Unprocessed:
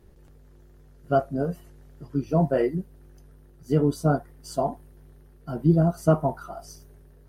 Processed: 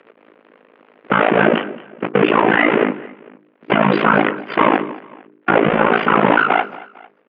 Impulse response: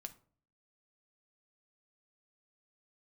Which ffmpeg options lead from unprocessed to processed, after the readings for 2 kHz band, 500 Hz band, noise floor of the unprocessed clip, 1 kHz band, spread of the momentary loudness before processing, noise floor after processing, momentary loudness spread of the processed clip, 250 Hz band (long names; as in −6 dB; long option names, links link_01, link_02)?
+27.0 dB, +9.5 dB, −53 dBFS, +16.0 dB, 18 LU, −56 dBFS, 14 LU, +8.0 dB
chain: -filter_complex "[0:a]aeval=exprs='val(0)+0.5*0.0282*sgn(val(0))':channel_layout=same,agate=range=-59dB:threshold=-32dB:ratio=16:detection=peak,bandreject=frequency=50:width_type=h:width=6,bandreject=frequency=100:width_type=h:width=6,bandreject=frequency=150:width_type=h:width=6,bandreject=frequency=200:width_type=h:width=6,bandreject=frequency=250:width_type=h:width=6,bandreject=frequency=300:width_type=h:width=6,bandreject=frequency=350:width_type=h:width=6,highpass=frequency=210:width_type=q:width=0.5412,highpass=frequency=210:width_type=q:width=1.307,lowpass=frequency=2800:width_type=q:width=0.5176,lowpass=frequency=2800:width_type=q:width=0.7071,lowpass=frequency=2800:width_type=q:width=1.932,afreqshift=54,afftfilt=real='re*lt(hypot(re,im),0.178)':imag='im*lt(hypot(re,im),0.178)':win_size=1024:overlap=0.75,equalizer=frequency=780:width=2.2:gain=-4.5,asplit=2[link_01][link_02];[link_02]acompressor=threshold=-44dB:ratio=16,volume=2.5dB[link_03];[link_01][link_03]amix=inputs=2:normalize=0,afftdn=noise_reduction=13:noise_floor=-58,tremolo=f=55:d=0.947,asplit=2[link_04][link_05];[link_05]aecho=0:1:225|450:0.1|0.03[link_06];[link_04][link_06]amix=inputs=2:normalize=0,acompressor=mode=upward:threshold=-55dB:ratio=2.5,alimiter=level_in=28dB:limit=-1dB:release=50:level=0:latency=1,volume=-1dB"